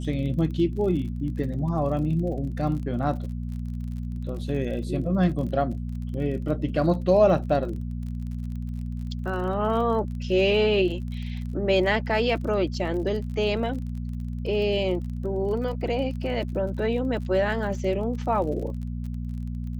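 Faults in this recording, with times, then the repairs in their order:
crackle 39 per s -35 dBFS
hum 60 Hz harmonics 4 -31 dBFS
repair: de-click; de-hum 60 Hz, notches 4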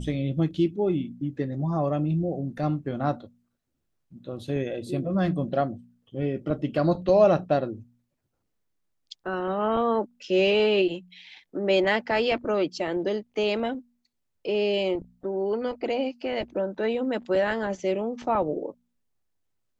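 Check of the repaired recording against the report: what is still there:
nothing left

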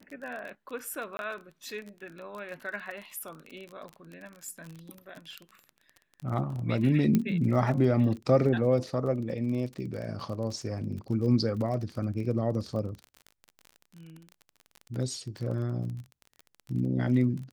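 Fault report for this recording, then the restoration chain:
crackle 29 per s -36 dBFS
1.17–1.19 s: dropout 21 ms
7.15 s: pop -13 dBFS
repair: de-click; interpolate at 1.17 s, 21 ms

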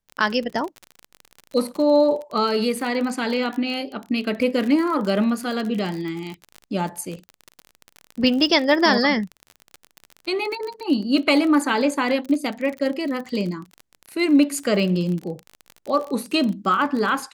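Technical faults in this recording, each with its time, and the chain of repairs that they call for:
crackle 36 per s -27 dBFS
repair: de-click

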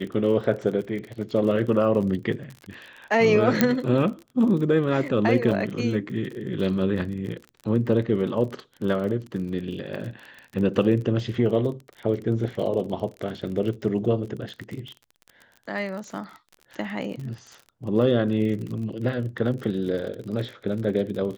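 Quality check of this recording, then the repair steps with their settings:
crackle 38 per s -33 dBFS
3.61 s: pop -4 dBFS
5.51–5.52 s: dropout 5.8 ms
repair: de-click; interpolate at 5.51 s, 5.8 ms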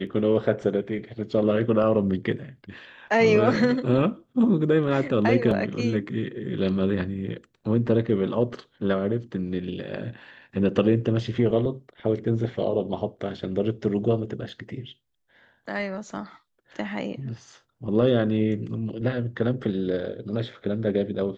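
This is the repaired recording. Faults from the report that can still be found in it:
3.61 s: pop

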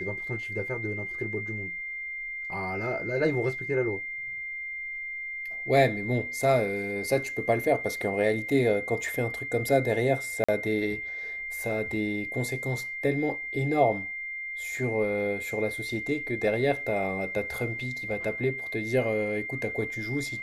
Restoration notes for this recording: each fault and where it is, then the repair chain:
whine 2.1 kHz -33 dBFS
10.44–10.48 s: dropout 45 ms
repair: band-stop 2.1 kHz, Q 30; interpolate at 10.44 s, 45 ms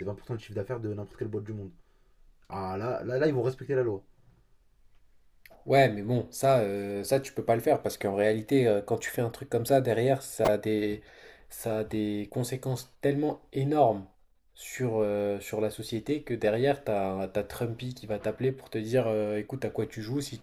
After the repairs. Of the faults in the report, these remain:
nothing left

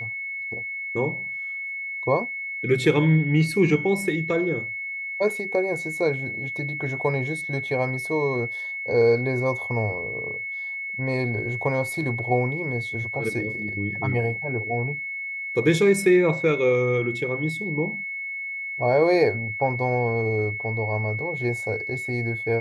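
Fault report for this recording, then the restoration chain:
whine 2.2 kHz -29 dBFS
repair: band-stop 2.2 kHz, Q 30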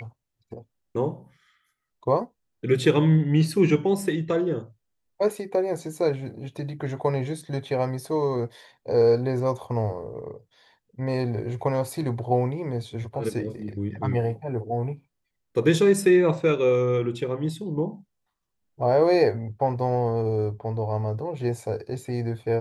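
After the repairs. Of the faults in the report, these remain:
nothing left

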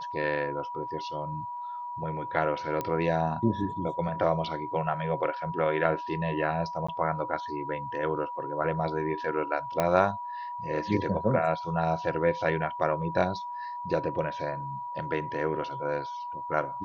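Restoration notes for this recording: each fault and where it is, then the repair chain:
whine 970 Hz -34 dBFS
2.81 s: pop -17 dBFS
6.87–6.88 s: dropout 15 ms
9.80 s: pop -12 dBFS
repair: de-click; band-stop 970 Hz, Q 30; interpolate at 6.87 s, 15 ms

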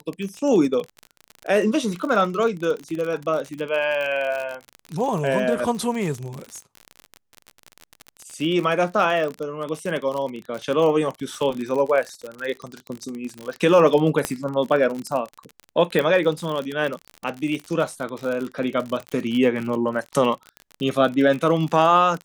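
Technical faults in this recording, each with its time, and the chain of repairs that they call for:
crackle 46 per s -26 dBFS
14.25 s: pop -7 dBFS
15.99 s: pop -10 dBFS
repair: de-click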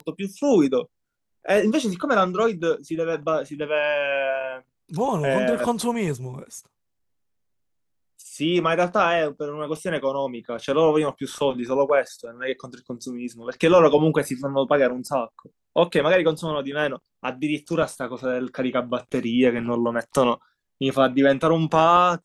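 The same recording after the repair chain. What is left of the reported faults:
14.25 s: pop

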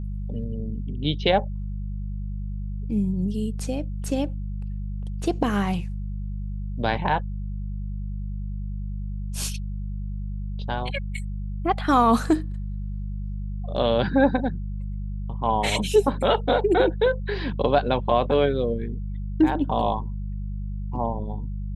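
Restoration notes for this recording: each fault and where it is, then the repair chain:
hum 50 Hz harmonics 4 -30 dBFS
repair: de-hum 50 Hz, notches 4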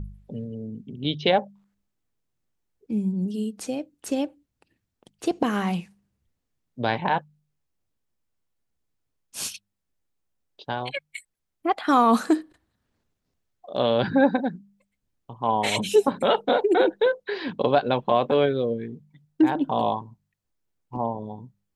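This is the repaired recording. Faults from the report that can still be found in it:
nothing left

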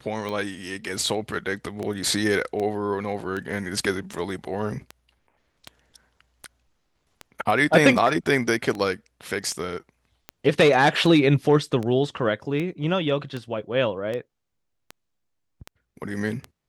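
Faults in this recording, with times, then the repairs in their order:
tick 78 rpm -18 dBFS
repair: de-click

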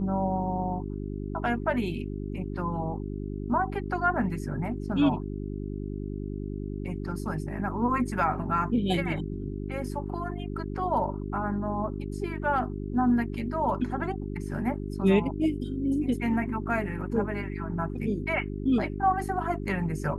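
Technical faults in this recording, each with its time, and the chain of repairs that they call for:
hum 50 Hz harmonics 8 -34 dBFS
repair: de-hum 50 Hz, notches 8

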